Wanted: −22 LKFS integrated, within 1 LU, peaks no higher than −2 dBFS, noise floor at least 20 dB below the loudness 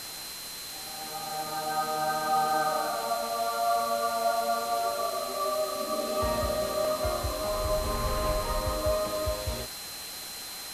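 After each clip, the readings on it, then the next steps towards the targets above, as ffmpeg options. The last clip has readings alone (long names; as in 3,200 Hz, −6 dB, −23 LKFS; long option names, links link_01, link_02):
interfering tone 4,100 Hz; level of the tone −42 dBFS; background noise floor −40 dBFS; target noise floor −50 dBFS; integrated loudness −30.0 LKFS; sample peak −15.5 dBFS; target loudness −22.0 LKFS
→ -af "bandreject=frequency=4100:width=30"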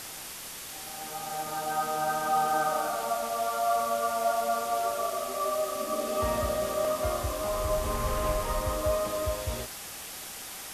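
interfering tone none found; background noise floor −41 dBFS; target noise floor −50 dBFS
→ -af "afftdn=noise_reduction=9:noise_floor=-41"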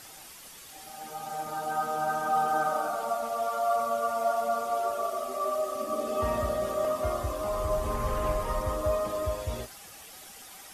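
background noise floor −48 dBFS; target noise floor −50 dBFS
→ -af "afftdn=noise_reduction=6:noise_floor=-48"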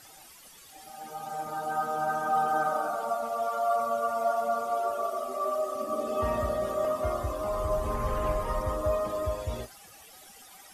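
background noise floor −52 dBFS; integrated loudness −30.0 LKFS; sample peak −16.5 dBFS; target loudness −22.0 LKFS
→ -af "volume=8dB"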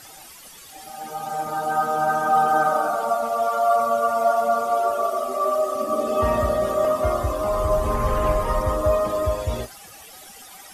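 integrated loudness −22.0 LKFS; sample peak −8.5 dBFS; background noise floor −44 dBFS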